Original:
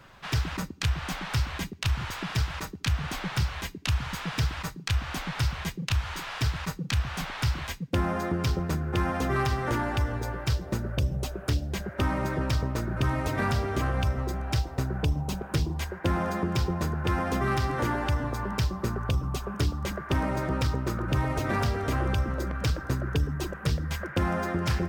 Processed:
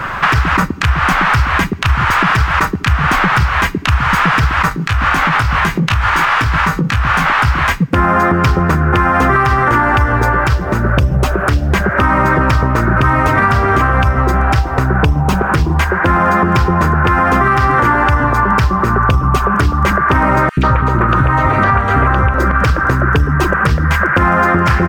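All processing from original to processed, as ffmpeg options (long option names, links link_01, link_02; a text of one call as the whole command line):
ffmpeg -i in.wav -filter_complex "[0:a]asettb=1/sr,asplit=3[link_01][link_02][link_03];[link_01]atrim=end=4.694[link_04];[link_02]atrim=start=4.69:end=7.45,asetpts=PTS-STARTPTS,afade=type=in:duration=0.004:curve=qsin,afade=type=out:start_time=2.756:duration=0.004:curve=qsin,acompressor=threshold=-38dB:ratio=4:attack=3.2:release=140:knee=1:detection=peak,asplit=2[link_05][link_06];[link_06]adelay=19,volume=-6dB[link_07];[link_05][link_07]amix=inputs=2:normalize=0,atrim=end_sample=121716[link_08];[link_03]atrim=start=7.446[link_09];[link_04][link_08]acrossfade=duration=0.004:curve1=hsin:curve2=qsin[link_10];[link_10][link_09]acrossfade=duration=0.004:curve1=qsin:curve2=hsin,asettb=1/sr,asplit=3[link_11][link_12][link_13];[link_11]atrim=end=20.494[link_14];[link_12]atrim=start=20.49:end=22.34,asetpts=PTS-STARTPTS,afade=type=in:duration=0.004:curve=qsin,afade=type=out:start_time=1.846:duration=0.004:curve=qsin,acrossover=split=4500[link_15][link_16];[link_16]acompressor=threshold=-57dB:ratio=4:attack=1:release=60[link_17];[link_15][link_17]amix=inputs=2:normalize=0,bandreject=frequency=5200:width=7.1,acrossover=split=330|2600[link_18][link_19][link_20];[link_18]adelay=80[link_21];[link_19]adelay=140[link_22];[link_21][link_22][link_20]amix=inputs=3:normalize=0,atrim=end_sample=81585[link_23];[link_13]atrim=start=22.336[link_24];[link_14][link_23]acrossfade=duration=0.004:curve1=hsin:curve2=qsin[link_25];[link_25][link_24]acrossfade=duration=0.004:curve1=qsin:curve2=hsin,firequalizer=gain_entry='entry(560,0);entry(1200,10);entry(3700,-6)':delay=0.05:min_phase=1,acompressor=threshold=-36dB:ratio=6,alimiter=level_in=28dB:limit=-1dB:release=50:level=0:latency=1,volume=-1dB" out.wav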